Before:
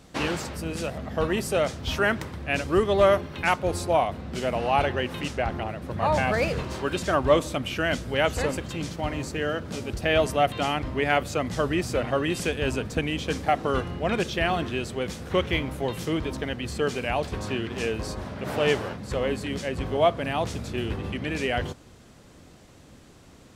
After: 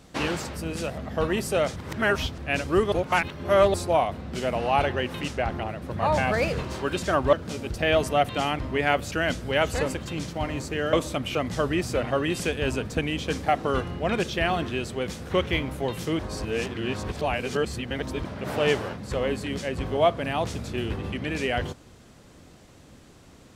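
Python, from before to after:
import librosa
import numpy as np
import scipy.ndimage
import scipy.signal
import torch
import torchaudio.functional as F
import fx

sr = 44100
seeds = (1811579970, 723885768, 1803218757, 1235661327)

y = fx.edit(x, sr, fx.reverse_span(start_s=1.76, length_s=0.62),
    fx.reverse_span(start_s=2.92, length_s=0.82),
    fx.swap(start_s=7.33, length_s=0.42, other_s=9.56, other_length_s=1.79),
    fx.reverse_span(start_s=16.19, length_s=2.06), tone=tone)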